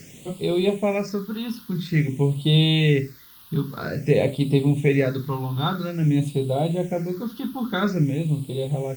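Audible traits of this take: a quantiser's noise floor 8-bit, dither triangular; phasing stages 6, 0.5 Hz, lowest notch 570–1700 Hz; Opus

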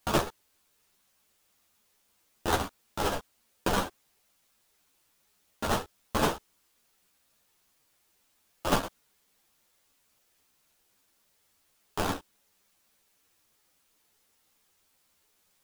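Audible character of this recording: aliases and images of a low sample rate 2200 Hz, jitter 20%; tremolo saw down 7.7 Hz, depth 60%; a quantiser's noise floor 12-bit, dither triangular; a shimmering, thickened sound

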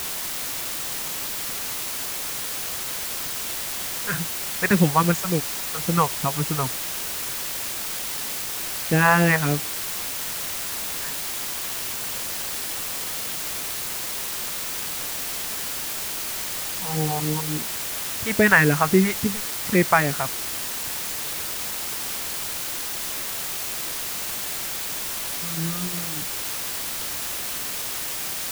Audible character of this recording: phasing stages 2, 3.6 Hz, lowest notch 270–1100 Hz; a quantiser's noise floor 6-bit, dither triangular

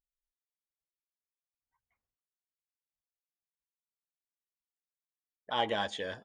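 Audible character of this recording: noise floor -97 dBFS; spectral tilt -1.0 dB/oct

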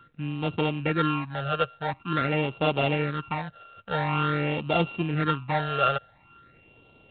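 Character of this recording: a buzz of ramps at a fixed pitch in blocks of 32 samples; phasing stages 8, 0.47 Hz, lowest notch 270–1700 Hz; G.726

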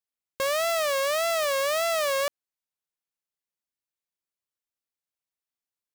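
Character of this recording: noise floor -93 dBFS; spectral tilt 0.0 dB/oct

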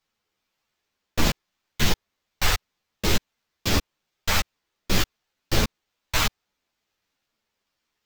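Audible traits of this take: phasing stages 2, 1.1 Hz, lowest notch 310–2100 Hz; aliases and images of a low sample rate 10000 Hz, jitter 0%; a shimmering, thickened sound

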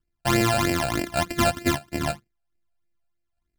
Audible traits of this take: a buzz of ramps at a fixed pitch in blocks of 128 samples; phasing stages 12, 3.2 Hz, lowest notch 330–1200 Hz

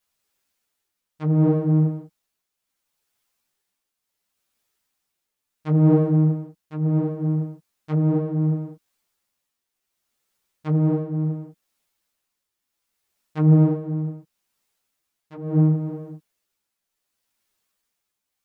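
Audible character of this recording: tremolo triangle 0.7 Hz, depth 60%; a shimmering, thickened sound

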